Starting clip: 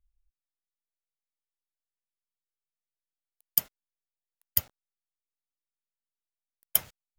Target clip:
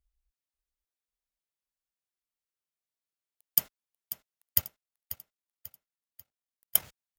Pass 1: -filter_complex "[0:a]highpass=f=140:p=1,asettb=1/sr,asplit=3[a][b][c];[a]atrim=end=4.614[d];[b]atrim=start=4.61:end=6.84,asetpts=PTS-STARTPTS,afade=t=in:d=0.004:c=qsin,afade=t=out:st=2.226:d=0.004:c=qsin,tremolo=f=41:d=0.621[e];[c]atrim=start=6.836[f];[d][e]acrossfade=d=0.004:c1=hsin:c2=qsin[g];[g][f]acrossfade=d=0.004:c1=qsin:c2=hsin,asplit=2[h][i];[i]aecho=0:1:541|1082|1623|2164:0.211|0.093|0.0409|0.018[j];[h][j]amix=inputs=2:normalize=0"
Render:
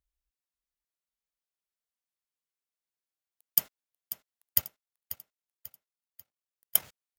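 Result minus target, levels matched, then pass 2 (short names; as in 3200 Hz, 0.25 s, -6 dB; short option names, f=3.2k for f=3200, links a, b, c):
125 Hz band -4.0 dB
-filter_complex "[0:a]highpass=f=39:p=1,asettb=1/sr,asplit=3[a][b][c];[a]atrim=end=4.614[d];[b]atrim=start=4.61:end=6.84,asetpts=PTS-STARTPTS,afade=t=in:d=0.004:c=qsin,afade=t=out:st=2.226:d=0.004:c=qsin,tremolo=f=41:d=0.621[e];[c]atrim=start=6.836[f];[d][e]acrossfade=d=0.004:c1=hsin:c2=qsin[g];[g][f]acrossfade=d=0.004:c1=qsin:c2=hsin,asplit=2[h][i];[i]aecho=0:1:541|1082|1623|2164:0.211|0.093|0.0409|0.018[j];[h][j]amix=inputs=2:normalize=0"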